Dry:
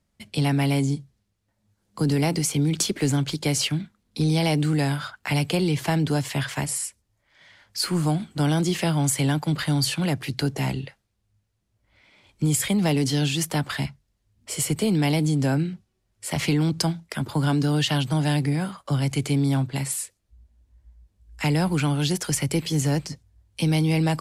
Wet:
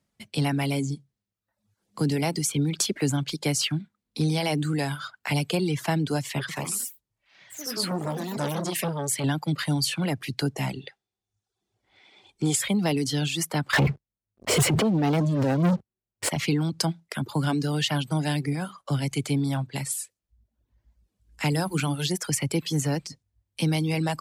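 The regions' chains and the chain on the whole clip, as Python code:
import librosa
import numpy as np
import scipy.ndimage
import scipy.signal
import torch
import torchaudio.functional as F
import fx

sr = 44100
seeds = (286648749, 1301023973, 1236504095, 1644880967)

y = fx.chain(x, sr, fx.echo_pitch(ms=99, semitones=3, count=3, db_per_echo=-6.0),
    fx.transformer_sat(knee_hz=770.0), at=(6.39, 9.24))
y = fx.chain(y, sr, fx.lowpass(hz=8600.0, slope=12),
    fx.tilt_shelf(db=-3.5, hz=1200.0),
    fx.small_body(hz=(390.0, 760.0, 3500.0), ring_ms=30, db=12), at=(10.81, 12.61))
y = fx.chain(y, sr, fx.lowpass(hz=1100.0, slope=6),
    fx.over_compress(threshold_db=-27.0, ratio=-0.5),
    fx.leveller(passes=5), at=(13.73, 16.29))
y = fx.chain(y, sr, fx.high_shelf(hz=10000.0, db=9.0),
    fx.hum_notches(base_hz=60, count=7), at=(21.5, 22.06))
y = fx.dereverb_blind(y, sr, rt60_s=0.82)
y = scipy.signal.sosfilt(scipy.signal.butter(2, 48.0, 'highpass', fs=sr, output='sos'), y)
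y = fx.peak_eq(y, sr, hz=67.0, db=-10.5, octaves=0.72)
y = F.gain(torch.from_numpy(y), -1.0).numpy()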